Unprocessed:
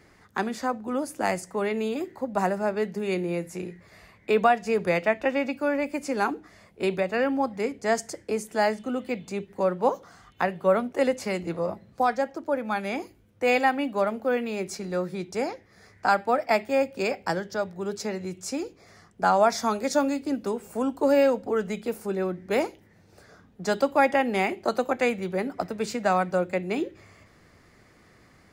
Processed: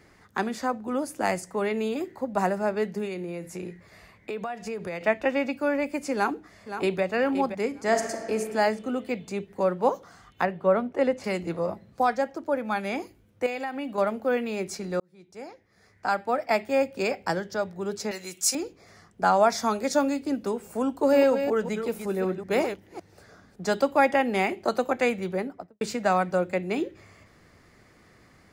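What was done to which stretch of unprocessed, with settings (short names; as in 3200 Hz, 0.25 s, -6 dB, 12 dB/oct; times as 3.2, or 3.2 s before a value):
3.05–5.01 compressor, threshold -30 dBFS
6.14–7.02 echo throw 0.52 s, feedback 30%, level -9.5 dB
7.68–8.38 reverb throw, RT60 1.8 s, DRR 5 dB
10.45–11.24 LPF 2100 Hz 6 dB/oct
13.46–13.98 compressor 5:1, threshold -29 dBFS
15–16.79 fade in
18.11–18.55 tilt +4.5 dB/oct
20.94–23.7 reverse delay 0.187 s, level -8 dB
25.27–25.81 studio fade out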